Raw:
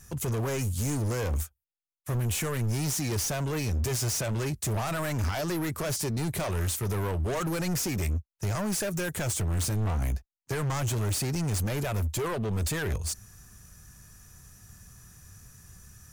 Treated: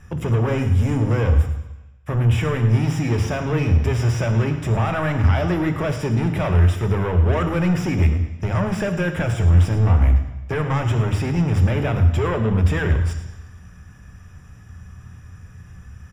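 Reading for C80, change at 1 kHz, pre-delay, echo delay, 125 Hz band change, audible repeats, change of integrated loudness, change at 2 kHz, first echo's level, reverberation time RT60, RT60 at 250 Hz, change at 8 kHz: 9.5 dB, +8.5 dB, 3 ms, 108 ms, +12.0 dB, 2, +10.0 dB, +8.0 dB, -13.5 dB, 1.0 s, 0.95 s, -9.5 dB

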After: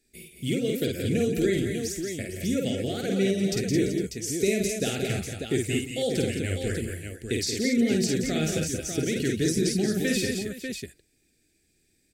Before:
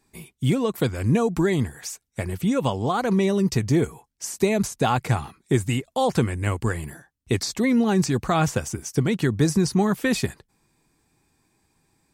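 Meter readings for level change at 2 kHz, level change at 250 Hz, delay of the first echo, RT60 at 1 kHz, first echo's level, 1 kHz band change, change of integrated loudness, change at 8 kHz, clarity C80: -2.5 dB, -3.0 dB, 51 ms, no reverb, -3.5 dB, -17.0 dB, -3.5 dB, +1.0 dB, no reverb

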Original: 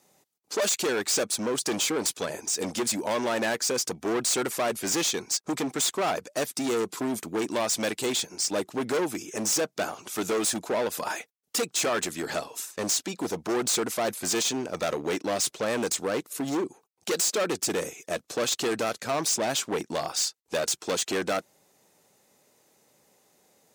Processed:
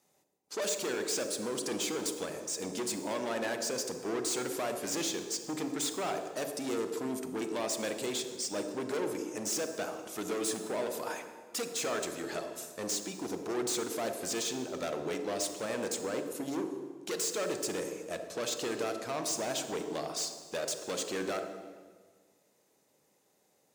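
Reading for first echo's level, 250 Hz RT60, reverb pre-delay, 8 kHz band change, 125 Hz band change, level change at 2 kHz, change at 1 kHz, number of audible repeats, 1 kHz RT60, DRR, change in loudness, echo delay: no echo, 1.7 s, 32 ms, -8.0 dB, -7.0 dB, -8.0 dB, -7.5 dB, no echo, 1.4 s, 6.0 dB, -7.0 dB, no echo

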